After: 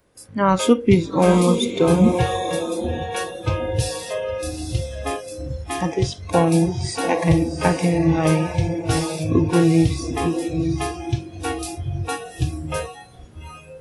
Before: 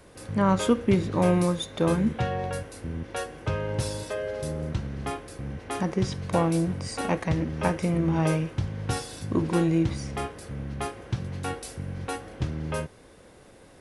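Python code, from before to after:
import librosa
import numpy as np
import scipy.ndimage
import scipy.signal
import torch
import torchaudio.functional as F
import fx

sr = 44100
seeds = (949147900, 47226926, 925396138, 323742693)

y = fx.echo_diffused(x, sr, ms=811, feedback_pct=41, wet_db=-5)
y = fx.noise_reduce_blind(y, sr, reduce_db=18)
y = F.gain(torch.from_numpy(y), 7.5).numpy()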